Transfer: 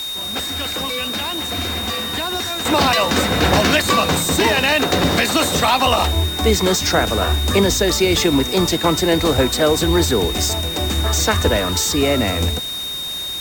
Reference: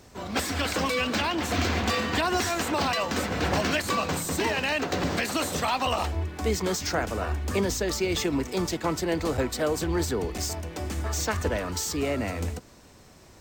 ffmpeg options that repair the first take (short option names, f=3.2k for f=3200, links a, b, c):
-af "bandreject=f=3.7k:w=30,afwtdn=0.02,asetnsamples=n=441:p=0,asendcmd='2.65 volume volume -10.5dB',volume=0dB"